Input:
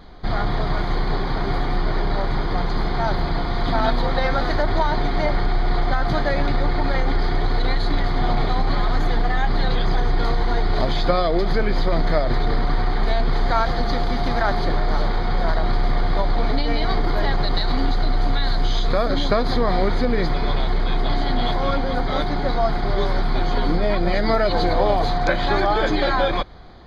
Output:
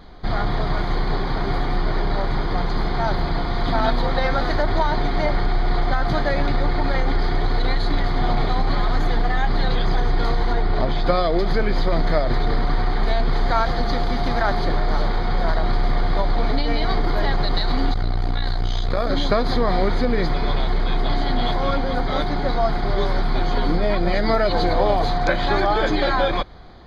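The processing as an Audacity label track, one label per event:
10.520000	11.050000	LPF 3300 Hz -> 2200 Hz 6 dB/oct
17.930000	19.070000	core saturation saturates under 99 Hz

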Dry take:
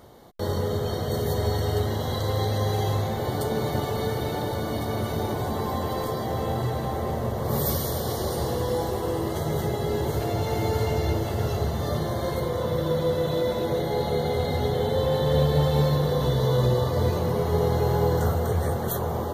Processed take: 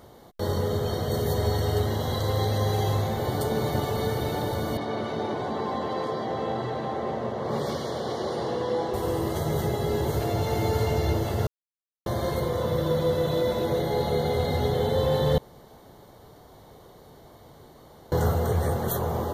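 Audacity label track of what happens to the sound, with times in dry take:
4.770000	8.940000	BPF 190–4100 Hz
11.470000	12.060000	mute
15.380000	18.120000	room tone

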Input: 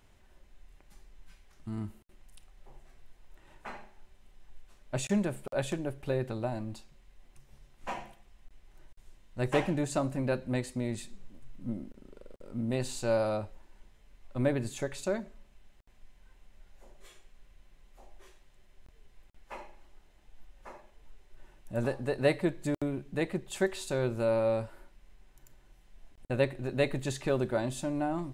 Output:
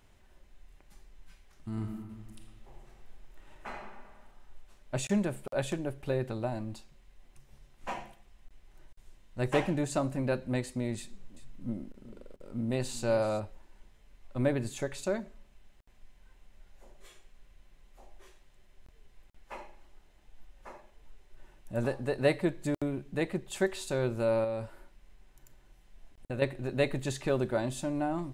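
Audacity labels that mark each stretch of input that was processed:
1.700000	3.770000	reverb throw, RT60 1.7 s, DRR 2 dB
10.980000	13.400000	echo 0.384 s -15.5 dB
24.440000	26.420000	compressor 2.5:1, threshold -32 dBFS

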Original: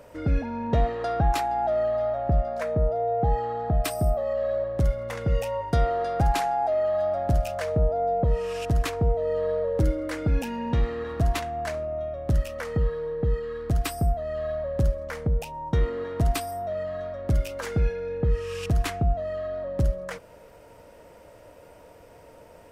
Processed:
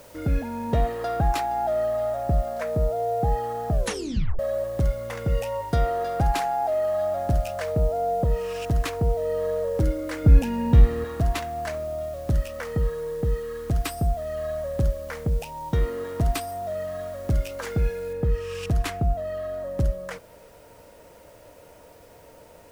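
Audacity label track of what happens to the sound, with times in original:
3.710000	3.710000	tape stop 0.68 s
10.240000	11.050000	low shelf 260 Hz +10.5 dB
18.130000	18.130000	noise floor step -54 dB -61 dB

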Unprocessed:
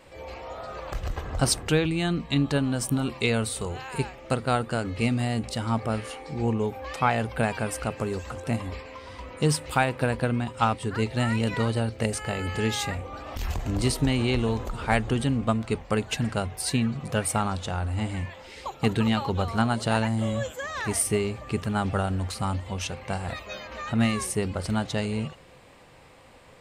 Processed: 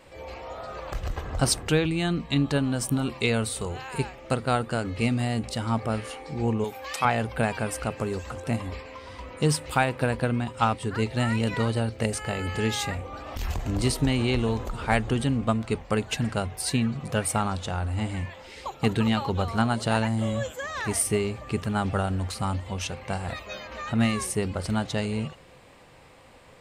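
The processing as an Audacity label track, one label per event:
6.640000	7.050000	tilt +3 dB/oct

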